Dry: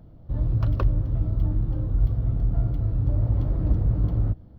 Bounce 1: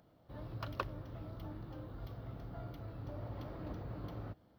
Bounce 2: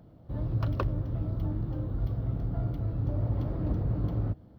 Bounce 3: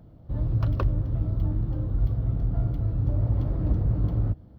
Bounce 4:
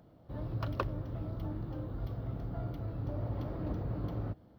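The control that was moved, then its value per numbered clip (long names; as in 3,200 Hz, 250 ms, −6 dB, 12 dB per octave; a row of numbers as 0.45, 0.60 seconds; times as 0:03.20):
high-pass filter, corner frequency: 1,300, 170, 52, 480 Hertz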